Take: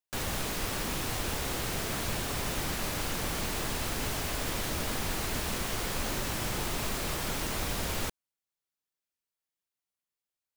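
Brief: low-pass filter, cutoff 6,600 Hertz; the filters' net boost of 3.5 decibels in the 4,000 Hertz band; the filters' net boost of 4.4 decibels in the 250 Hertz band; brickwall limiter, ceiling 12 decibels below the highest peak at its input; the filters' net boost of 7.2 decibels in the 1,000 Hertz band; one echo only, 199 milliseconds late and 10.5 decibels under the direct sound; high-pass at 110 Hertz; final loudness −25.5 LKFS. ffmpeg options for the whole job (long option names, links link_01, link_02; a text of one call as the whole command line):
ffmpeg -i in.wav -af "highpass=110,lowpass=6600,equalizer=frequency=250:width_type=o:gain=5.5,equalizer=frequency=1000:width_type=o:gain=8.5,equalizer=frequency=4000:width_type=o:gain=4.5,alimiter=level_in=6dB:limit=-24dB:level=0:latency=1,volume=-6dB,aecho=1:1:199:0.299,volume=12dB" out.wav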